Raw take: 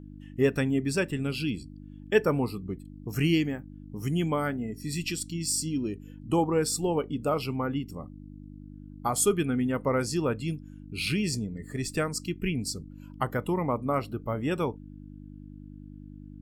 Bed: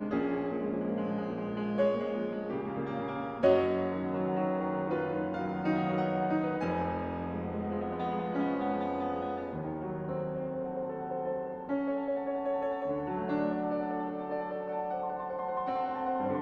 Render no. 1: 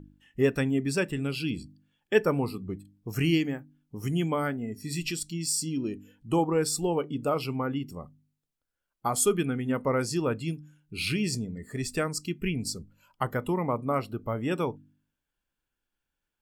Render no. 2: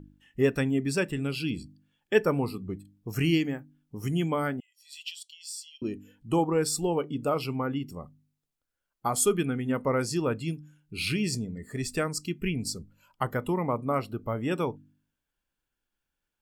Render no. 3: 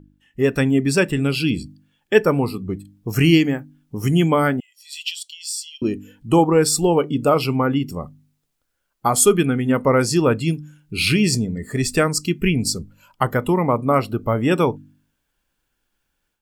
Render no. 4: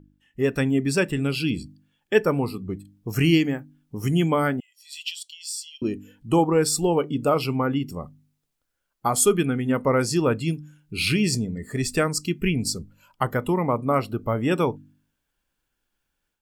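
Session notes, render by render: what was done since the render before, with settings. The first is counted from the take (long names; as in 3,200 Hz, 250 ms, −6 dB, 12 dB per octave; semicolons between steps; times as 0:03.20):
hum removal 50 Hz, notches 6
0:04.60–0:05.82: four-pole ladder high-pass 2,900 Hz, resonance 75%
automatic gain control gain up to 11.5 dB
level −4.5 dB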